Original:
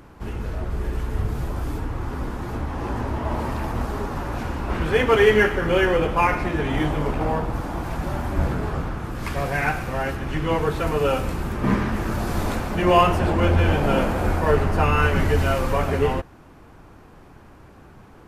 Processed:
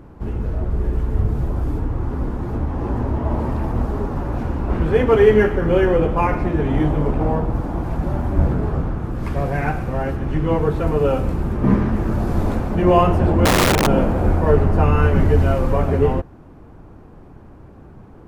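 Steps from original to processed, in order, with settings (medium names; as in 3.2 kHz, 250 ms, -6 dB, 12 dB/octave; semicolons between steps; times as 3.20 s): tilt shelf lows +7.5 dB, about 1.1 kHz; 13.45–13.87 s: integer overflow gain 8.5 dB; trim -1.5 dB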